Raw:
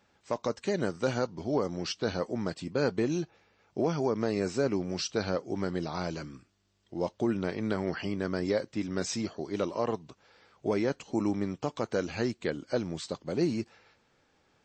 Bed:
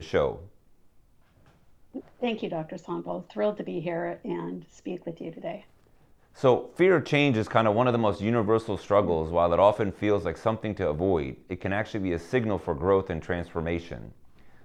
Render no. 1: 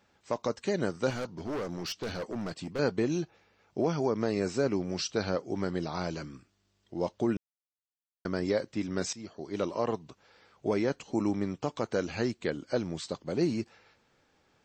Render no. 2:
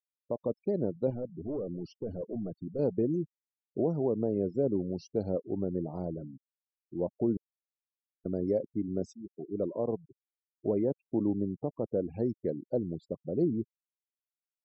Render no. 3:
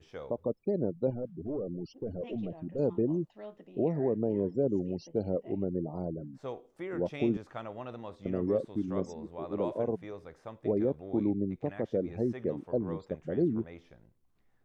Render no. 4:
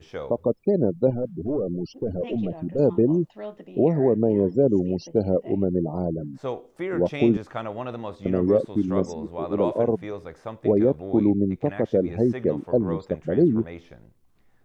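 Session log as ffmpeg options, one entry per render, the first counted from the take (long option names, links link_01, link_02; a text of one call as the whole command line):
ffmpeg -i in.wav -filter_complex "[0:a]asettb=1/sr,asplit=3[link_01][link_02][link_03];[link_01]atrim=end=1.104[link_04];[link_02]atrim=start=1.1:end=2.79,asetpts=PTS-STARTPTS,afade=type=in:duration=0.004:curve=qsin,afade=type=out:start_time=1.686:duration=0.004:curve=qsin,volume=31dB,asoftclip=hard,volume=-31dB[link_05];[link_03]atrim=start=2.786[link_06];[link_04][link_05]acrossfade=duration=0.004:curve1=hsin:curve2=qsin[link_07];[link_07][link_06]acrossfade=duration=0.004:curve1=qsin:curve2=hsin,asplit=4[link_08][link_09][link_10][link_11];[link_08]atrim=end=7.37,asetpts=PTS-STARTPTS,afade=type=out:start_time=7.366:duration=0.004:curve=hsin[link_12];[link_09]atrim=start=7.37:end=8.25,asetpts=PTS-STARTPTS,volume=0[link_13];[link_10]atrim=start=8.25:end=9.13,asetpts=PTS-STARTPTS,afade=type=in:duration=0.004:curve=hsin,afade=type=out:start_time=0.876:duration=0.004:curve=hsin:silence=0.149624[link_14];[link_11]atrim=start=9.13,asetpts=PTS-STARTPTS,afade=type=in:duration=0.53:silence=0.149624[link_15];[link_12][link_13][link_14][link_15]concat=n=4:v=0:a=1" out.wav
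ffmpeg -i in.wav -af "afftfilt=real='re*gte(hypot(re,im),0.0282)':imag='im*gte(hypot(re,im),0.0282)':win_size=1024:overlap=0.75,firequalizer=gain_entry='entry(530,0);entry(1500,-27);entry(2100,-19)':delay=0.05:min_phase=1" out.wav
ffmpeg -i in.wav -i bed.wav -filter_complex "[1:a]volume=-19dB[link_01];[0:a][link_01]amix=inputs=2:normalize=0" out.wav
ffmpeg -i in.wav -af "volume=9.5dB" out.wav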